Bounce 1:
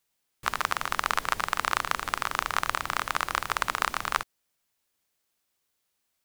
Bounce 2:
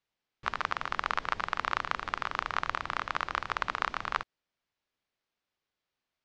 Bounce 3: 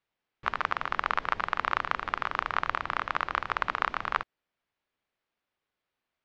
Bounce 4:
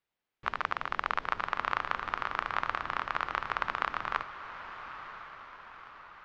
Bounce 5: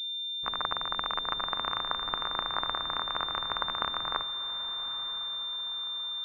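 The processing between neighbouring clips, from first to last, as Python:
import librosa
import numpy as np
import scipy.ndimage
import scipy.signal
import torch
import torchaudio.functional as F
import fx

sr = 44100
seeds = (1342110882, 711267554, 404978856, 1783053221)

y1 = scipy.signal.sosfilt(scipy.signal.bessel(6, 3700.0, 'lowpass', norm='mag', fs=sr, output='sos'), x)
y1 = y1 * 10.0 ** (-3.5 / 20.0)
y2 = fx.bass_treble(y1, sr, bass_db=-2, treble_db=-10)
y2 = y2 * 10.0 ** (3.0 / 20.0)
y3 = fx.echo_diffused(y2, sr, ms=984, feedback_pct=52, wet_db=-11)
y3 = y3 * 10.0 ** (-3.0 / 20.0)
y4 = fx.pwm(y3, sr, carrier_hz=3600.0)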